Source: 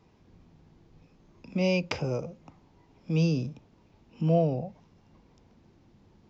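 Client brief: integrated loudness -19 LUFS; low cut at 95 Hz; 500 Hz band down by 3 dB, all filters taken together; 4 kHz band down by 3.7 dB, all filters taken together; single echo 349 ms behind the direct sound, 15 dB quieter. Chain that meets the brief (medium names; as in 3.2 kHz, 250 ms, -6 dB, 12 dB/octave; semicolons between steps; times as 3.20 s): high-pass 95 Hz; peaking EQ 500 Hz -3.5 dB; peaking EQ 4 kHz -5.5 dB; delay 349 ms -15 dB; trim +11.5 dB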